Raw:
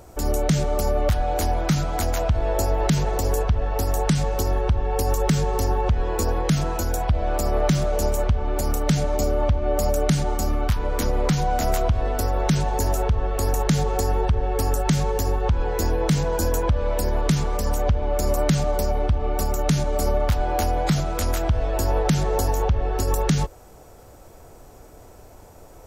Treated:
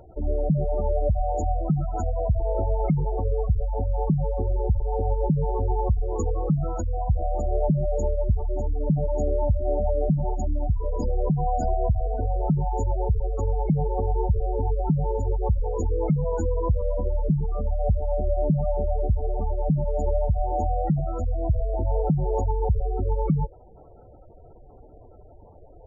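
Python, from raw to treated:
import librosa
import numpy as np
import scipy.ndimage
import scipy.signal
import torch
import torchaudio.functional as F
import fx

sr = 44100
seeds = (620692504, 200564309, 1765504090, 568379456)

y = fx.spec_gate(x, sr, threshold_db=-15, keep='strong')
y = F.gain(torch.from_numpy(y), -1.5).numpy()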